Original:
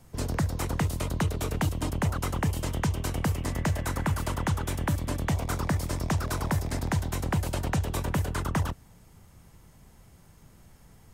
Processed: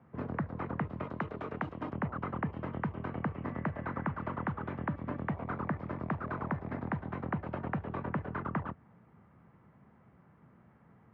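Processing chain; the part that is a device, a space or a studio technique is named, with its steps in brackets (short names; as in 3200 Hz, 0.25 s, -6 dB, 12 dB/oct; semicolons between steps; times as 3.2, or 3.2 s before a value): 1.04–1.93 tone controls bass -6 dB, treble +10 dB; bass amplifier (compressor 3:1, threshold -27 dBFS, peak gain reduction 4.5 dB; speaker cabinet 87–2000 Hz, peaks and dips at 93 Hz -8 dB, 220 Hz +4 dB, 1200 Hz +4 dB); gain -3.5 dB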